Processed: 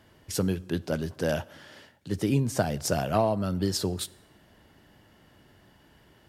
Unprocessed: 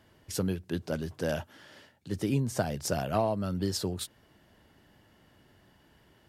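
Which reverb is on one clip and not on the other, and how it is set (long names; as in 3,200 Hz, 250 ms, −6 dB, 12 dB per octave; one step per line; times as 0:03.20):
dense smooth reverb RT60 0.99 s, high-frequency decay 0.8×, DRR 19.5 dB
level +3.5 dB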